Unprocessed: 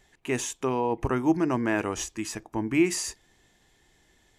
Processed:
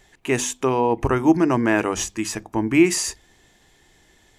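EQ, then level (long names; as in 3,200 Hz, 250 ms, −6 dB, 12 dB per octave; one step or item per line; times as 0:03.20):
mains-hum notches 50/100/150/200/250 Hz
+7.0 dB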